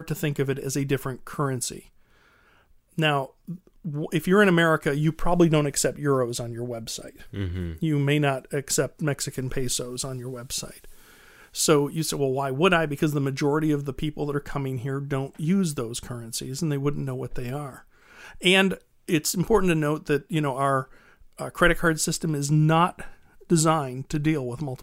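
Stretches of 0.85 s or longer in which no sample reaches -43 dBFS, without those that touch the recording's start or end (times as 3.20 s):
1.87–2.98 s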